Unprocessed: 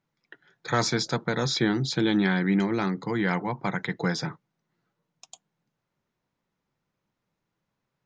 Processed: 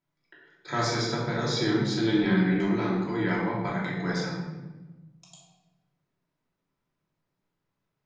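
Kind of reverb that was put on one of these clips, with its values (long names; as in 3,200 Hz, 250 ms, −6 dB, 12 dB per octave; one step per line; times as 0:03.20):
rectangular room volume 680 cubic metres, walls mixed, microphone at 2.9 metres
level −8.5 dB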